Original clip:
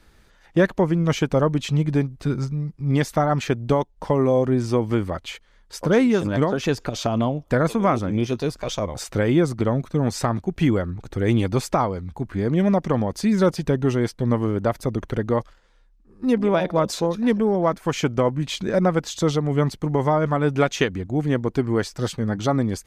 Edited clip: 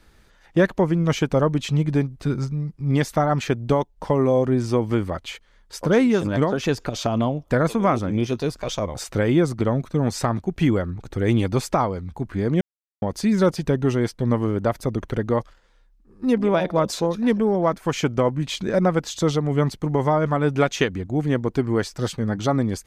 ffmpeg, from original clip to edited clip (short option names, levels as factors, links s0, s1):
-filter_complex "[0:a]asplit=3[s0][s1][s2];[s0]atrim=end=12.61,asetpts=PTS-STARTPTS,afade=t=out:st=12.606:d=0.004:c=hsin[s3];[s1]atrim=start=12.61:end=13.02,asetpts=PTS-STARTPTS,volume=0[s4];[s2]atrim=start=13.02,asetpts=PTS-STARTPTS,afade=t=in:d=0.004:c=hsin[s5];[s3][s4][s5]concat=n=3:v=0:a=1"